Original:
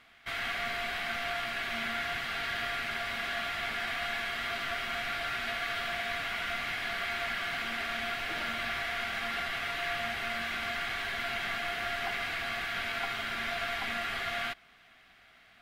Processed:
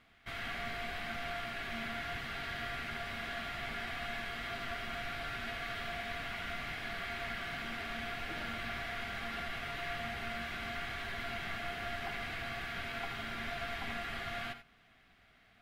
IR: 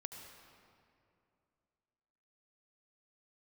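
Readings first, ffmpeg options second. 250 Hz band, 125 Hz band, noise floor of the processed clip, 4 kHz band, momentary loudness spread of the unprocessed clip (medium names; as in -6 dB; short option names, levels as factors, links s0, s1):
-0.5 dB, +2.0 dB, -65 dBFS, -7.5 dB, 1 LU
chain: -filter_complex "[0:a]lowshelf=f=420:g=10.5[s0];[1:a]atrim=start_sample=2205,atrim=end_sample=4410[s1];[s0][s1]afir=irnorm=-1:irlink=0,volume=0.708"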